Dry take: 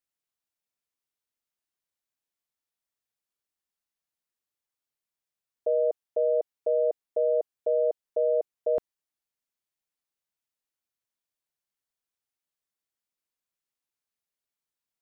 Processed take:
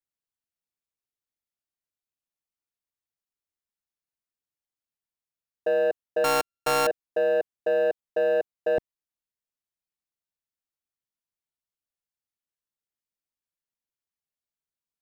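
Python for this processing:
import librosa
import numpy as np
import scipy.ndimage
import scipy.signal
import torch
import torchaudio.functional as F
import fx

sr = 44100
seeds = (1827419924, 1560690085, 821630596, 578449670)

y = fx.sample_sort(x, sr, block=32, at=(6.24, 6.87))
y = fx.low_shelf(y, sr, hz=240.0, db=7.5)
y = fx.leveller(y, sr, passes=2)
y = y * librosa.db_to_amplitude(-3.0)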